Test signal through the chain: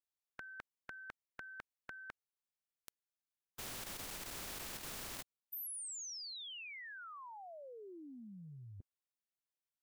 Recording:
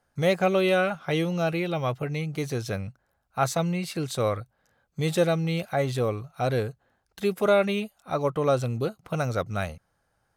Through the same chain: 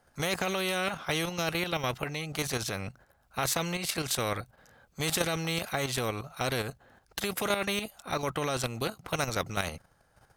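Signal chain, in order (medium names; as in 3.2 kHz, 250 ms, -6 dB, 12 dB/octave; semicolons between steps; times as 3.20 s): level held to a coarse grid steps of 9 dB; spectrum-flattening compressor 2:1; trim -2 dB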